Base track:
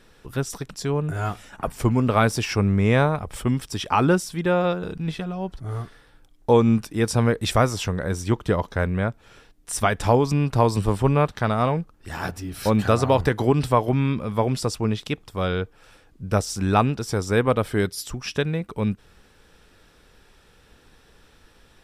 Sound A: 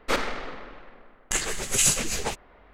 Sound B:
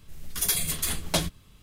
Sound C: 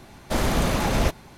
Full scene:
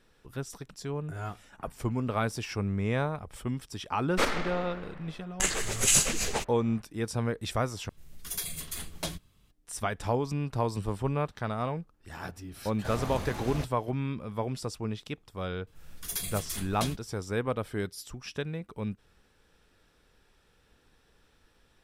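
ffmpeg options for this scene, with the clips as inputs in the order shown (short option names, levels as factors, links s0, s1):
-filter_complex "[2:a]asplit=2[s0][s1];[0:a]volume=0.299,asplit=2[s2][s3];[s2]atrim=end=7.894[s4];[s0]atrim=end=1.62,asetpts=PTS-STARTPTS,volume=0.335[s5];[s3]atrim=start=9.506[s6];[1:a]atrim=end=2.73,asetpts=PTS-STARTPTS,volume=0.841,afade=t=in:d=0.004:c=hsin,afade=t=out:st=2.726:d=0.004:c=hsin,adelay=180369S[s7];[3:a]atrim=end=1.37,asetpts=PTS-STARTPTS,volume=0.188,afade=t=in:d=0.004:c=hsin,afade=t=out:st=1.366:d=0.004:c=hsin,adelay=12540[s8];[s1]atrim=end=1.62,asetpts=PTS-STARTPTS,volume=0.355,afade=t=in:d=0.004:c=hsin,afade=t=out:st=1.616:d=0.004:c=hsin,adelay=15670[s9];[s4][s5]acrossfade=d=0.004:c1=hsin:c2=hsin[s10];[s10][s6]acrossfade=d=0.004:c1=hsin:c2=hsin[s11];[s11][s7][s8][s9]amix=inputs=4:normalize=0"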